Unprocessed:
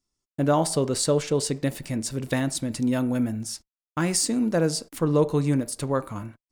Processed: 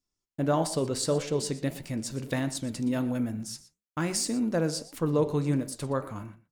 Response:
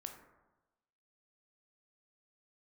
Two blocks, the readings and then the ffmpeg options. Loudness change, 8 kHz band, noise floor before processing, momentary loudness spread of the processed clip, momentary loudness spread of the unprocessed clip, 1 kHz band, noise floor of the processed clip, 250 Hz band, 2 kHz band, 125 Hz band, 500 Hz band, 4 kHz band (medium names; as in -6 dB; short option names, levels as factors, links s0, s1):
-4.5 dB, -6.0 dB, under -85 dBFS, 10 LU, 10 LU, -4.5 dB, under -85 dBFS, -4.5 dB, -4.5 dB, -4.0 dB, -4.5 dB, -4.5 dB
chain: -af "equalizer=f=9200:w=3:g=-3,flanger=delay=6.6:depth=7.2:regen=-83:speed=1.6:shape=sinusoidal,aecho=1:1:119:0.141"